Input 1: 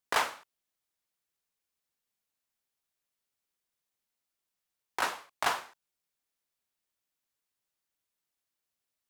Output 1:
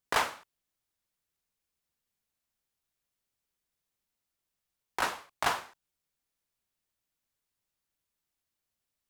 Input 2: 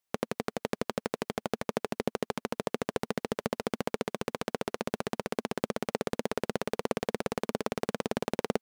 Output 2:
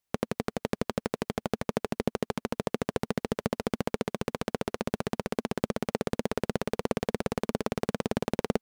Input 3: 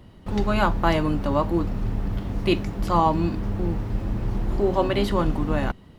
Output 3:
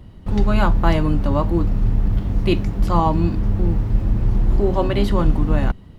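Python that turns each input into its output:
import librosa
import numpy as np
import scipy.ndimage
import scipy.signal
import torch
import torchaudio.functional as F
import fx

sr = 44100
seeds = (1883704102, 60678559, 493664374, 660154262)

y = fx.low_shelf(x, sr, hz=170.0, db=10.0)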